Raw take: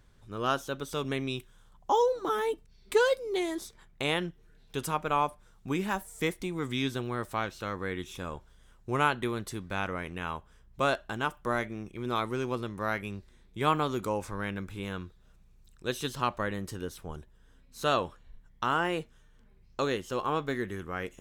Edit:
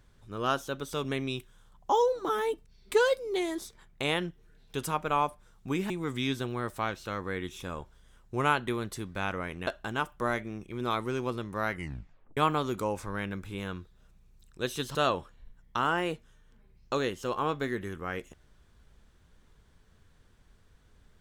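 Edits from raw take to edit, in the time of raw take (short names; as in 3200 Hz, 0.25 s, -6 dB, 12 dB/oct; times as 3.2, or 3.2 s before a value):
5.9–6.45 cut
10.22–10.92 cut
12.96 tape stop 0.66 s
16.2–17.82 cut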